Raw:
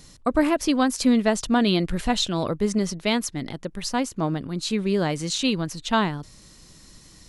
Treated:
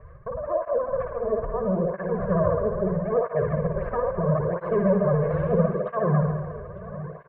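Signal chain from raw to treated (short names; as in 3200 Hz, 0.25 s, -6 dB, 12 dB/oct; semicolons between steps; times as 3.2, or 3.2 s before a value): minimum comb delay 1.7 ms; treble ducked by the level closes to 930 Hz, closed at -19 dBFS; steep low-pass 1600 Hz 36 dB/oct; bell 350 Hz -5 dB 0.8 oct; comb 1.9 ms, depth 83%; negative-ratio compressor -26 dBFS, ratio -1; feedback echo 0.903 s, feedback 48%, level -15 dB; spring tank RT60 1.5 s, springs 53 ms, chirp 45 ms, DRR 0.5 dB; vibrato 14 Hz 71 cents; tape flanging out of phase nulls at 0.76 Hz, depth 5.9 ms; gain +4 dB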